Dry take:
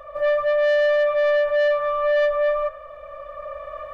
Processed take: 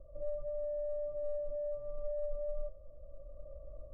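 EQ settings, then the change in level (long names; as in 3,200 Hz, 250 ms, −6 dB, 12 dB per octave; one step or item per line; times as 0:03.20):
transistor ladder low-pass 450 Hz, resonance 25%
spectral tilt −1.5 dB per octave
low-shelf EQ 69 Hz +7 dB
−4.0 dB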